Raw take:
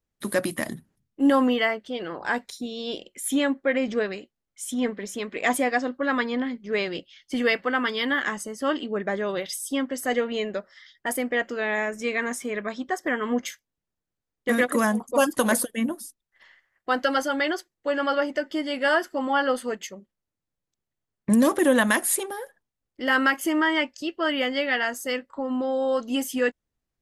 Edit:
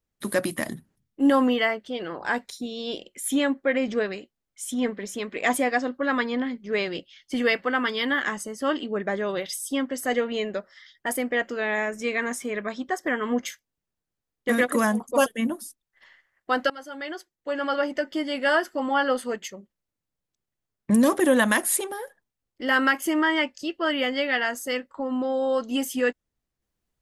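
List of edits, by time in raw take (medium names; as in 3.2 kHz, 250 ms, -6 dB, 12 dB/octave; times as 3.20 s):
15.26–15.65 s: delete
17.09–18.34 s: fade in, from -21 dB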